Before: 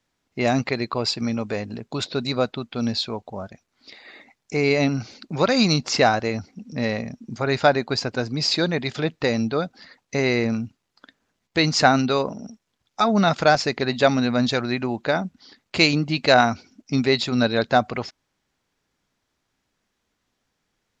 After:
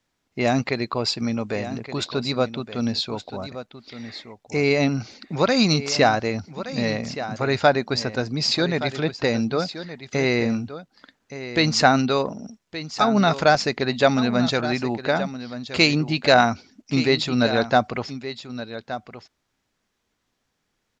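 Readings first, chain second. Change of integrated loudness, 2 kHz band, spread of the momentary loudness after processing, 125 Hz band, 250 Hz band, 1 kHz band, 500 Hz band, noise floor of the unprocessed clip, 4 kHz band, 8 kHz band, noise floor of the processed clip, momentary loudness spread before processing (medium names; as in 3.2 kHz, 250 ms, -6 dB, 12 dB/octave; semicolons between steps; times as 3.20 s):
0.0 dB, 0.0 dB, 16 LU, 0.0 dB, +0.5 dB, 0.0 dB, +0.5 dB, -76 dBFS, 0.0 dB, 0.0 dB, -75 dBFS, 13 LU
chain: delay 1171 ms -12.5 dB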